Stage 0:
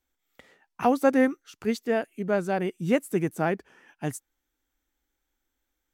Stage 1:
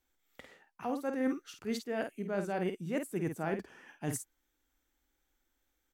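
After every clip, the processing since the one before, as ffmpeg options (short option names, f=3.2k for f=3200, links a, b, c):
-filter_complex "[0:a]areverse,acompressor=threshold=-31dB:ratio=12,areverse,asplit=2[a][b];[b]adelay=50,volume=-7dB[c];[a][c]amix=inputs=2:normalize=0"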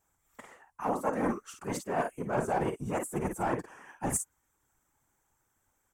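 -af "aeval=exprs='clip(val(0),-1,0.0251)':c=same,afftfilt=real='hypot(re,im)*cos(2*PI*random(0))':imag='hypot(re,im)*sin(2*PI*random(1))':win_size=512:overlap=0.75,equalizer=f=1k:t=o:w=1:g=11,equalizer=f=4k:t=o:w=1:g=-10,equalizer=f=8k:t=o:w=1:g=11,volume=7.5dB"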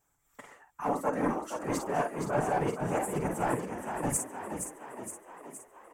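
-filter_complex "[0:a]aecho=1:1:6.9:0.33,asplit=2[a][b];[b]asplit=8[c][d][e][f][g][h][i][j];[c]adelay=468,afreqshift=41,volume=-7dB[k];[d]adelay=936,afreqshift=82,volume=-11.6dB[l];[e]adelay=1404,afreqshift=123,volume=-16.2dB[m];[f]adelay=1872,afreqshift=164,volume=-20.7dB[n];[g]adelay=2340,afreqshift=205,volume=-25.3dB[o];[h]adelay=2808,afreqshift=246,volume=-29.9dB[p];[i]adelay=3276,afreqshift=287,volume=-34.5dB[q];[j]adelay=3744,afreqshift=328,volume=-39.1dB[r];[k][l][m][n][o][p][q][r]amix=inputs=8:normalize=0[s];[a][s]amix=inputs=2:normalize=0"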